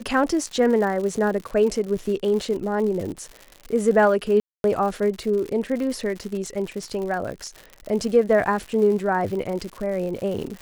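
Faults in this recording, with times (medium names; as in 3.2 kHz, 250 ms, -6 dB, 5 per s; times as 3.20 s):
crackle 140 per s -30 dBFS
4.40–4.64 s: dropout 242 ms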